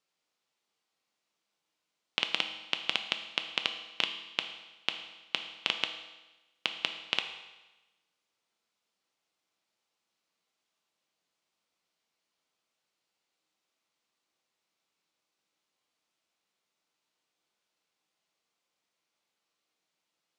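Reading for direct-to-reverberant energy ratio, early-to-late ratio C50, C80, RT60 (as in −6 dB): 6.0 dB, 9.0 dB, 11.0 dB, 1.1 s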